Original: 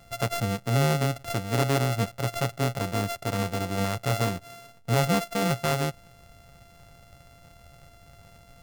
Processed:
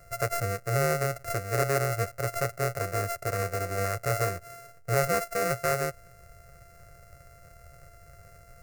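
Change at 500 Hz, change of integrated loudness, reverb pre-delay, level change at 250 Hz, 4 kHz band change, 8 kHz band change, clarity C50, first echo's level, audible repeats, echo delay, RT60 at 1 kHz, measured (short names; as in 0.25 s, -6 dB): +0.5 dB, -2.0 dB, none, -10.0 dB, -7.5 dB, +0.5 dB, none, none, none, none, none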